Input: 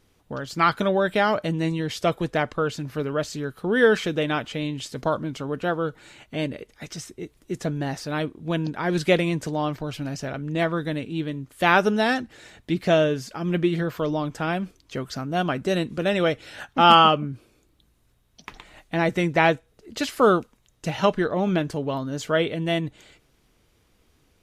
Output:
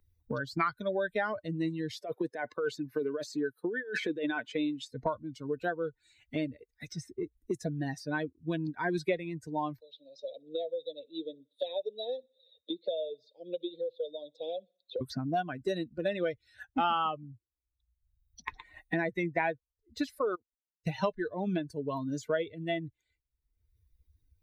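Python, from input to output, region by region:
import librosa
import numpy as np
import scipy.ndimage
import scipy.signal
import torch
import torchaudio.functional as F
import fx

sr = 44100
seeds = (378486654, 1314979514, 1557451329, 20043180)

y = fx.chain(x, sr, fx.highpass(hz=220.0, slope=12),
    fx.over_compress(threshold_db=-27.0, ratio=-1.0), at=(1.93, 4.91))
y = fx.chain(y, sr, fx.double_bandpass(hz=1400.0, octaves=2.8),
    fx.echo_feedback(ms=61, feedback_pct=56, wet_db=-18.5),
    fx.band_squash(depth_pct=40), at=(9.8, 15.01))
y = fx.chain(y, sr, fx.bass_treble(bass_db=-8, treble_db=-12),
    fx.level_steps(step_db=21), at=(20.19, 20.87))
y = fx.bin_expand(y, sr, power=2.0)
y = fx.bass_treble(y, sr, bass_db=-9, treble_db=-11)
y = fx.band_squash(y, sr, depth_pct=100)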